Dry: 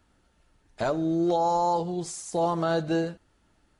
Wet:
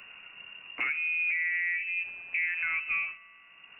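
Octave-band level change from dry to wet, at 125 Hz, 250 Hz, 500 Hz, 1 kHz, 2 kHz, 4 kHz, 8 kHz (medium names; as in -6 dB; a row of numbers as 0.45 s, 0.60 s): under -30 dB, under -30 dB, under -30 dB, -21.0 dB, +14.5 dB, -4.0 dB, under -40 dB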